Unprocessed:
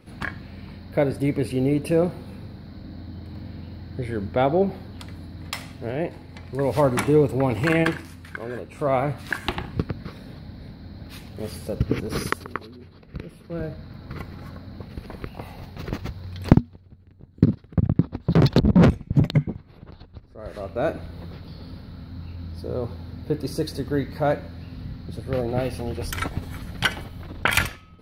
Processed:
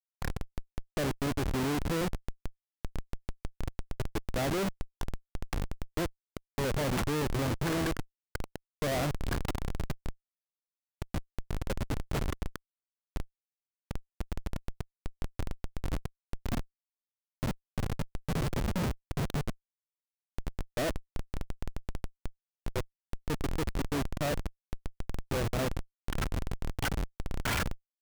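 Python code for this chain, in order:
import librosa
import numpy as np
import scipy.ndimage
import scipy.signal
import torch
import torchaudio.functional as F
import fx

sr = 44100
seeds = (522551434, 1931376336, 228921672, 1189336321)

y = fx.level_steps(x, sr, step_db=13)
y = fx.schmitt(y, sr, flips_db=-31.5)
y = F.gain(torch.from_numpy(y), 1.5).numpy()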